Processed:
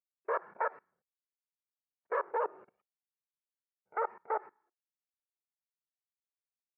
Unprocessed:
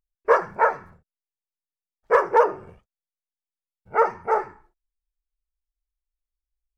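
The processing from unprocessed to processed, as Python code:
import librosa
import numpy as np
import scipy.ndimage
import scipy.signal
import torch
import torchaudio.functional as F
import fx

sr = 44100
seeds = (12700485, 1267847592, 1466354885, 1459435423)

y = fx.peak_eq(x, sr, hz=820.0, db=-4.0, octaves=1.7, at=(0.61, 2.16), fade=0.02)
y = fx.level_steps(y, sr, step_db=22)
y = fx.bandpass_edges(y, sr, low_hz=420.0, high_hz=2400.0)
y = fx.air_absorb(y, sr, metres=170.0)
y = y * librosa.db_to_amplitude(-6.5)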